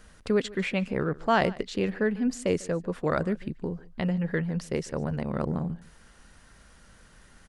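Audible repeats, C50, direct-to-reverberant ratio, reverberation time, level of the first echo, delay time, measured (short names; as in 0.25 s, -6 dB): 1, none, none, none, -21.0 dB, 0.147 s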